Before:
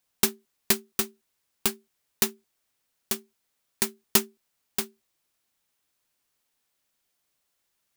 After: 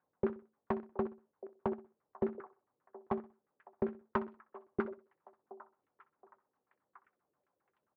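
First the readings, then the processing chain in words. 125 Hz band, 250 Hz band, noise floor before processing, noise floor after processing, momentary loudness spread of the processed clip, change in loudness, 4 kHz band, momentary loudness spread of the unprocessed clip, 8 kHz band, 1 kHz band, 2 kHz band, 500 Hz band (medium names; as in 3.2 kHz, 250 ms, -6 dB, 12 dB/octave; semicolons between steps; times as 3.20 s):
-4.0 dB, -3.0 dB, -77 dBFS, under -85 dBFS, 18 LU, -12.5 dB, under -35 dB, 9 LU, under -40 dB, -1.5 dB, -13.5 dB, -0.5 dB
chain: band-stop 670 Hz, Q 12; compression, threshold -24 dBFS, peak gain reduction 9.5 dB; valve stage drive 23 dB, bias 0.75; repeats whose band climbs or falls 723 ms, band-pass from 540 Hz, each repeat 0.7 oct, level -11.5 dB; LFO low-pass saw down 7.5 Hz 370–1500 Hz; band-pass 100–2200 Hz; feedback delay 63 ms, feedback 32%, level -17 dB; tape noise reduction on one side only decoder only; trim +6.5 dB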